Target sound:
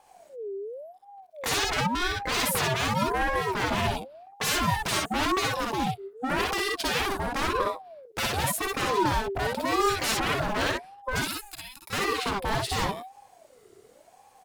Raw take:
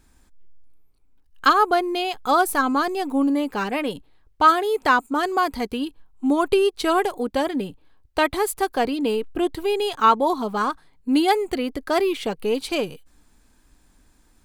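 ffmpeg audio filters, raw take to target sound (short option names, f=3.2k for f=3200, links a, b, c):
-filter_complex "[0:a]asettb=1/sr,asplit=3[a][b][c];[a]atrim=end=1.454[d];[b]atrim=start=1.45:end=2.35,asetpts=PTS-STARTPTS,afade=t=in:d=0.004:c=qsin,afade=t=out:st=0.896:d=0.004:c=qsin,lowpass=f=3.7k:p=1[e];[c]atrim=start=2.346[f];[d][e]acrossfade=d=0.004:c1=hsin:c2=qsin[g];[g][f]acrossfade=d=0.004:c1=qsin:c2=hsin,asettb=1/sr,asplit=3[h][i][j];[h]atrim=end=11.214[k];[i]atrim=start=11.21:end=11.93,asetpts=PTS-STARTPTS,afade=t=in:d=0.004:c=qsin,afade=t=out:st=0.716:d=0.004:c=qsin,aderivative[l];[j]atrim=start=11.926[m];[k][l]acrossfade=d=0.004:c1=hsin:c2=qsin[n];[n][m]acrossfade=d=0.004:c1=qsin:c2=hsin,aeval=exprs='0.0794*(abs(mod(val(0)/0.0794+3,4)-2)-1)':c=same,aecho=1:1:53|63:0.596|0.668,aeval=exprs='val(0)*sin(2*PI*600*n/s+600*0.35/0.91*sin(2*PI*0.91*n/s))':c=same,volume=1.5dB"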